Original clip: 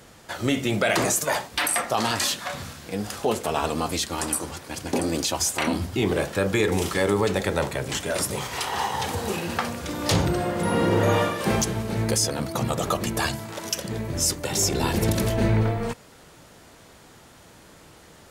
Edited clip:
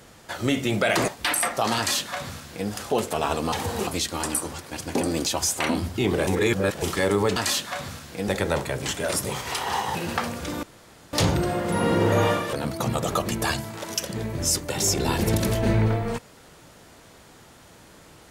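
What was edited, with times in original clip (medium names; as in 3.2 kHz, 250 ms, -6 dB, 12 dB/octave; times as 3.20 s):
1.08–1.41 s: delete
2.10–3.02 s: copy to 7.34 s
6.25–6.80 s: reverse
9.01–9.36 s: move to 3.85 s
10.04 s: insert room tone 0.50 s
11.44–12.28 s: delete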